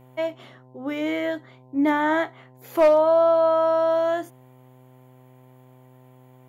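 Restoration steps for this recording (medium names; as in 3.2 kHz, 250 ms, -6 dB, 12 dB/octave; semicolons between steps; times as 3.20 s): clip repair -10.5 dBFS; de-hum 127.9 Hz, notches 8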